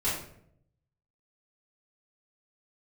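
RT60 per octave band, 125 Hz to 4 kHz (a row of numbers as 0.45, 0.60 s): 1.2, 0.90, 0.80, 0.60, 0.55, 0.40 s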